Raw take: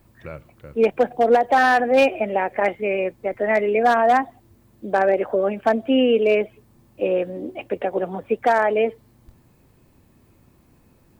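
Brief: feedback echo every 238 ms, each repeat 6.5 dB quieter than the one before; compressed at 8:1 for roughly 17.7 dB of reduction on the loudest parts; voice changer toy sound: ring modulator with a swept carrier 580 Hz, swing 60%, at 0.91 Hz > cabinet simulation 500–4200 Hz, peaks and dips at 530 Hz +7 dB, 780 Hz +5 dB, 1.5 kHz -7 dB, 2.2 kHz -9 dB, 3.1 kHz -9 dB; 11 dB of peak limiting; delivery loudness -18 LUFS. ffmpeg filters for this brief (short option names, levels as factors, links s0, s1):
-af "acompressor=threshold=0.0282:ratio=8,alimiter=level_in=2:limit=0.0631:level=0:latency=1,volume=0.501,aecho=1:1:238|476|714|952|1190|1428:0.473|0.222|0.105|0.0491|0.0231|0.0109,aeval=exprs='val(0)*sin(2*PI*580*n/s+580*0.6/0.91*sin(2*PI*0.91*n/s))':c=same,highpass=500,equalizer=f=530:t=q:w=4:g=7,equalizer=f=780:t=q:w=4:g=5,equalizer=f=1500:t=q:w=4:g=-7,equalizer=f=2200:t=q:w=4:g=-9,equalizer=f=3100:t=q:w=4:g=-9,lowpass=f=4200:w=0.5412,lowpass=f=4200:w=1.3066,volume=16.8"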